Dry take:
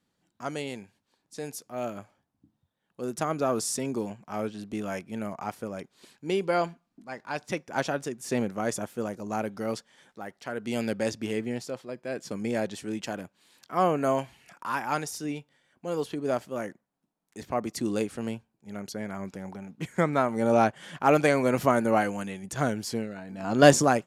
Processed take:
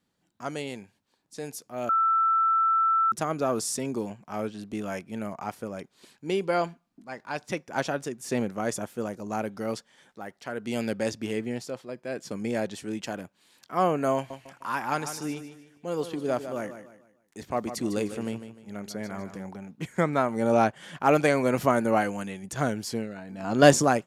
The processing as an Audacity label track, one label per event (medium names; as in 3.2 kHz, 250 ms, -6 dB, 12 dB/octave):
1.890000	3.120000	bleep 1.33 kHz -19.5 dBFS
14.150000	19.440000	feedback delay 151 ms, feedback 35%, level -10.5 dB